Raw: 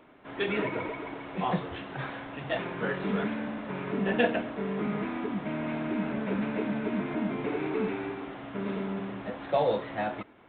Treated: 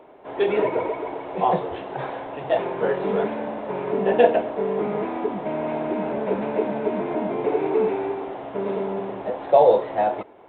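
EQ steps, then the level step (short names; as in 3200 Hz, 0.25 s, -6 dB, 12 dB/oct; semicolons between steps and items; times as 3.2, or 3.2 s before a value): band shelf 590 Hz +11.5 dB; 0.0 dB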